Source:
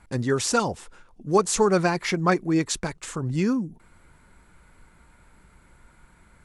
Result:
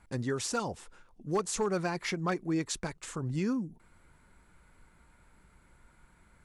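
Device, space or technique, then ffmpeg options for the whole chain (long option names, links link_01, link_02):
clipper into limiter: -af "asoftclip=type=hard:threshold=-12dB,alimiter=limit=-16dB:level=0:latency=1:release=190,volume=-6.5dB"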